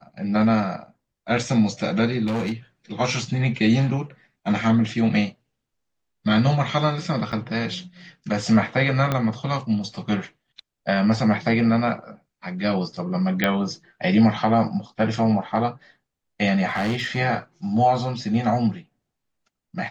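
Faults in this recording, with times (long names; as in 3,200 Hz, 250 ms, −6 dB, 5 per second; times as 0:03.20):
0:02.26–0:02.52: clipping −21.5 dBFS
0:07.32–0:07.33: drop-out 7.1 ms
0:09.12: click −9 dBFS
0:13.44: click −7 dBFS
0:16.67–0:17.18: clipping −20 dBFS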